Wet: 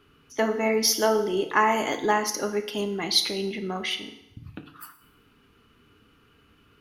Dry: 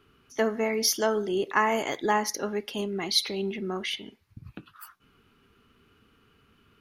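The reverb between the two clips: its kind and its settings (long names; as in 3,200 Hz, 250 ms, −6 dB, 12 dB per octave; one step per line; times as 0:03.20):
feedback delay network reverb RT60 0.87 s, low-frequency decay 0.9×, high-frequency decay 0.9×, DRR 6.5 dB
level +2 dB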